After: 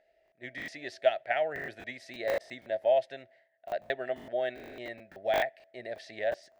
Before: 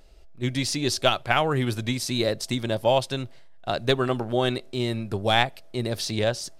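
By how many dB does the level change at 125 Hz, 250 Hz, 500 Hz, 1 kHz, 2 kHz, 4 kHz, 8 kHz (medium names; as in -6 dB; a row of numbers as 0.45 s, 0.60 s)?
-27.5 dB, -19.5 dB, -4.5 dB, -8.5 dB, -7.0 dB, -17.5 dB, under -20 dB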